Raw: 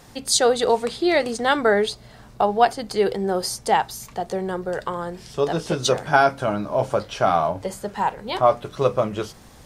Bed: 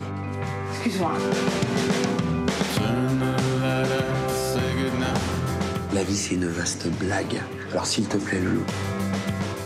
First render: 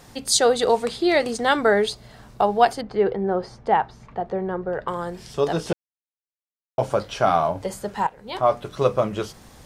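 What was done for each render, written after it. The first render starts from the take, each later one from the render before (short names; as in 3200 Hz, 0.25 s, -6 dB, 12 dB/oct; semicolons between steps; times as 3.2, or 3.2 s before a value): 2.81–4.88 LPF 1800 Hz; 5.73–6.78 mute; 8.07–8.86 fade in equal-power, from -15.5 dB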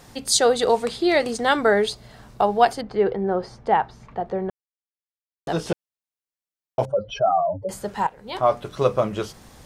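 4.5–5.47 mute; 6.85–7.69 spectral contrast raised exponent 2.6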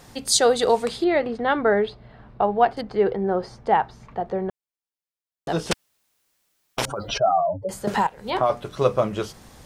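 1.04–2.77 air absorption 410 m; 5.71–7.18 spectral compressor 4:1; 7.87–8.5 three-band squash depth 100%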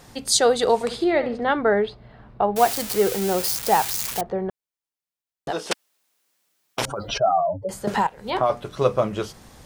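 0.74–1.51 flutter echo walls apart 11.9 m, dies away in 0.34 s; 2.56–4.21 switching spikes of -14.5 dBFS; 5.5–6.79 HPF 420 Hz -> 110 Hz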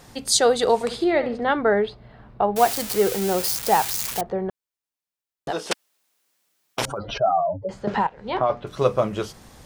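6.98–8.67 air absorption 170 m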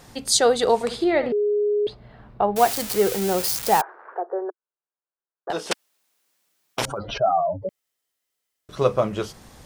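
1.32–1.87 bleep 415 Hz -18 dBFS; 3.81–5.5 Chebyshev band-pass 350–1600 Hz, order 4; 7.69–8.69 room tone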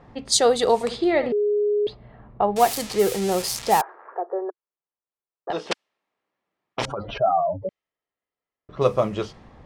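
notch 1500 Hz, Q 11; low-pass opened by the level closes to 1500 Hz, open at -16.5 dBFS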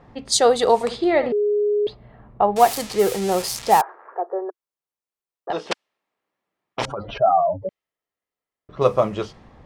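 dynamic EQ 900 Hz, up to +4 dB, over -28 dBFS, Q 0.74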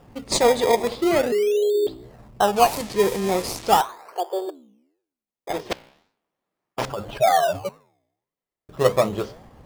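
flange 1.8 Hz, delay 8.9 ms, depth 8.7 ms, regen -89%; in parallel at -3 dB: decimation with a swept rate 21×, swing 100% 0.4 Hz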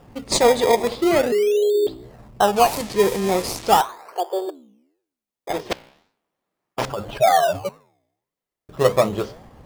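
gain +2 dB; limiter -3 dBFS, peak gain reduction 2.5 dB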